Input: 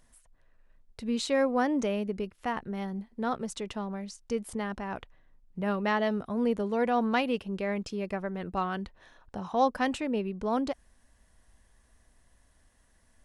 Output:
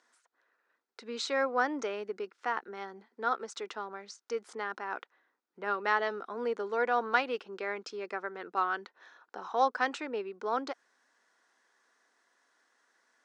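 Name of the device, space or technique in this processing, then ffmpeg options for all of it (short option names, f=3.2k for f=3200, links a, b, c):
phone speaker on a table: -af "highpass=f=360:w=0.5412,highpass=f=360:w=1.3066,equalizer=f=600:t=q:w=4:g=-8,equalizer=f=1.4k:t=q:w=4:g=8,equalizer=f=2.9k:t=q:w=4:g=-5,lowpass=f=6.7k:w=0.5412,lowpass=f=6.7k:w=1.3066"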